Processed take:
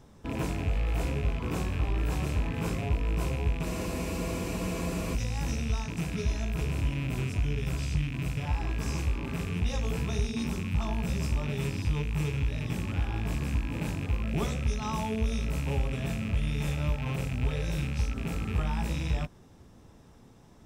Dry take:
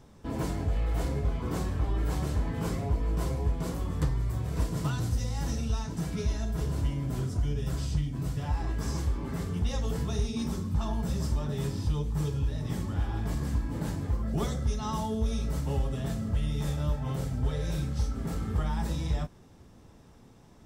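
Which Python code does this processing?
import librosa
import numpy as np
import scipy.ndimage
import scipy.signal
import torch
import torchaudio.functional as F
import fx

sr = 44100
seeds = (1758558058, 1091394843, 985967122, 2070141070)

y = fx.rattle_buzz(x, sr, strikes_db=-34.0, level_db=-30.0)
y = fx.notch(y, sr, hz=4500.0, q=25.0)
y = fx.spec_freeze(y, sr, seeds[0], at_s=3.68, hold_s=1.46)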